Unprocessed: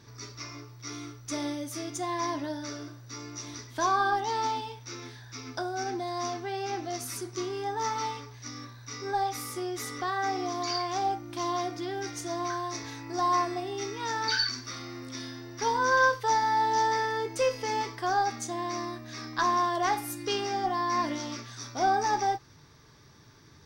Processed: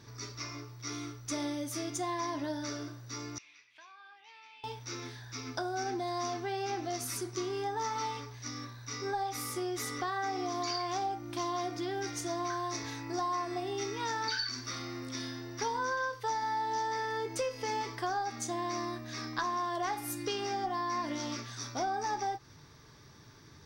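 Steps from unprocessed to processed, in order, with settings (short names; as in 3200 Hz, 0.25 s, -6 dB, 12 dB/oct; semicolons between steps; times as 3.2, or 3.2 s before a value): compressor 6:1, threshold -31 dBFS, peak gain reduction 12.5 dB; 3.38–4.64 band-pass 2500 Hz, Q 6.6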